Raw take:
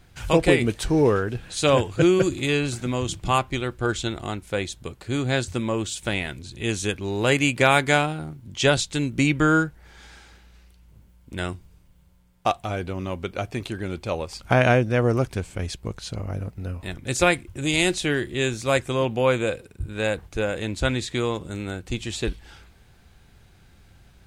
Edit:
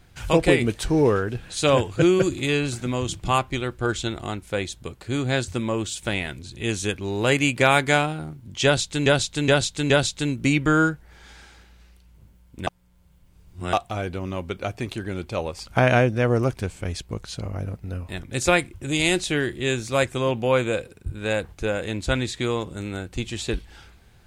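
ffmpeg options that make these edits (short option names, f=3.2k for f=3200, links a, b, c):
-filter_complex "[0:a]asplit=6[a][b][c][d][e][f];[a]atrim=end=9.062[g];[b]atrim=start=8.638:end=9.062[h];[c]atrim=start=8.638:end=9.062[i];[d]atrim=start=8.638:end=11.412[j];[e]atrim=start=11.408:end=12.472,asetpts=PTS-STARTPTS,areverse[k];[f]atrim=start=12.468[l];[g][h]acrossfade=d=0.004:c1=hsin:c2=hsin[m];[m][i]acrossfade=d=0.004:c1=hsin:c2=hsin[n];[n][j]acrossfade=d=0.004:c1=hsin:c2=hsin[o];[o][k]acrossfade=d=0.004:c1=hsin:c2=hsin[p];[p][l]acrossfade=d=0.004:c1=hsin:c2=hsin"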